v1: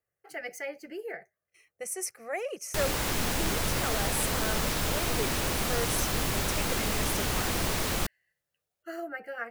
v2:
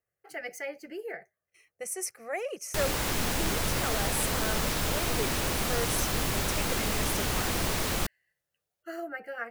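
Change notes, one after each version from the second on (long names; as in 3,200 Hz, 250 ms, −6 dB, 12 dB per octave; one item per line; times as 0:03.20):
nothing changed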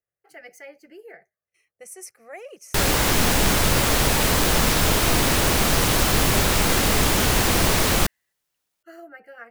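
speech −5.5 dB
background +10.0 dB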